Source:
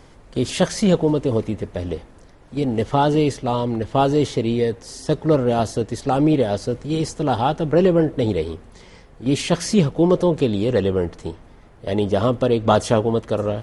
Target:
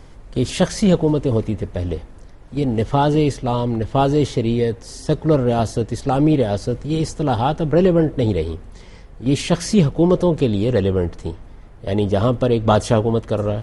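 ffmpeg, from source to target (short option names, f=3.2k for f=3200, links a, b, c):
-af "lowshelf=f=100:g=10"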